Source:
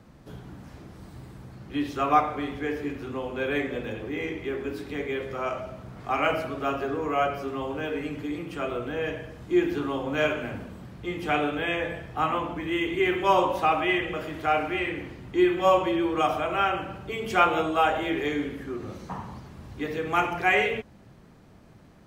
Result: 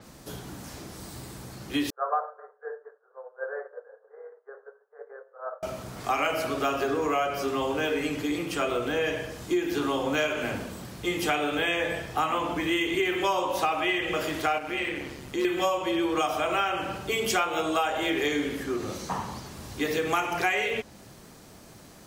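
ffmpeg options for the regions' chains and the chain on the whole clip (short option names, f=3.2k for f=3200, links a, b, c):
-filter_complex "[0:a]asettb=1/sr,asplit=3[a][b][c];[a]atrim=end=1.904[d];[b]atrim=start=1.9:end=5.63,asetpts=PTS-STARTPTS,afade=t=in:d=0.004:c=qsin,afade=t=out:st=3.726:d=0.004:c=qsin,agate=range=-33dB:threshold=-24dB:ratio=3:release=100:detection=peak,asuperpass=centerf=850:order=20:qfactor=0.72,equalizer=f=960:w=0.92:g=-8[e];[c]atrim=start=5.626[f];[d][e]acrossfade=d=0.004:c1=hsin:c2=qsin[g];[g][f]acrossfade=d=0.004:c1=qsin:c2=hsin,asettb=1/sr,asplit=3[h][i][j];[h]atrim=end=14.584[k];[i]atrim=start=14.58:end=15.45,asetpts=PTS-STARTPTS,afade=t=in:d=0.004:c=qsin,afade=t=out:st=0.866:d=0.004:c=qsin,volume=15dB,asoftclip=hard,volume=-15dB,acompressor=threshold=-32dB:ratio=2:attack=3.2:release=140:knee=1:detection=peak,tremolo=f=140:d=0.519[l];[j]atrim=start=15.446[m];[k][l]acrossfade=d=0.004:c1=hsin:c2=qsin[n];[n][m]acrossfade=d=0.004:c1=qsin:c2=hsin,bass=f=250:g=-6,treble=f=4k:g=14,acompressor=threshold=-28dB:ratio=10,adynamicequalizer=threshold=0.002:dfrequency=6800:dqfactor=0.7:tfrequency=6800:tqfactor=0.7:attack=5:release=100:ratio=0.375:range=2.5:mode=cutabove:tftype=highshelf,volume=5.5dB"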